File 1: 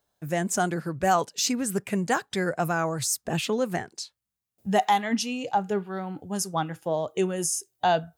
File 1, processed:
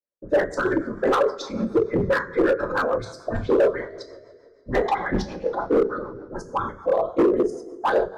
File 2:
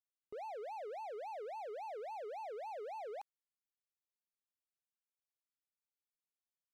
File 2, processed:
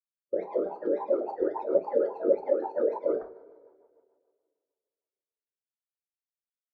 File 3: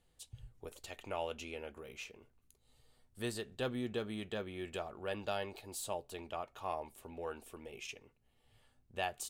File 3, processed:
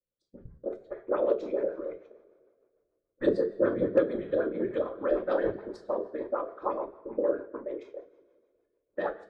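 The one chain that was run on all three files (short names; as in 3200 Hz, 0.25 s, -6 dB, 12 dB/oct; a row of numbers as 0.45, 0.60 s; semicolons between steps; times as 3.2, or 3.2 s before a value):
octaver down 1 oct, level 0 dB; high shelf 4800 Hz -12 dB; LFO low-pass saw up 9.2 Hz 380–4600 Hz; fixed phaser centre 750 Hz, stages 6; whisperiser; gate -52 dBFS, range -19 dB; spectral noise reduction 12 dB; notches 50/100/150/200 Hz; two-slope reverb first 0.33 s, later 2.1 s, from -20 dB, DRR 1.5 dB; rotary speaker horn 6.7 Hz; overloaded stage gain 25.5 dB; bell 450 Hz +7.5 dB 2.6 oct; normalise peaks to -12 dBFS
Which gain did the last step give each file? +4.5, +9.5, +5.5 dB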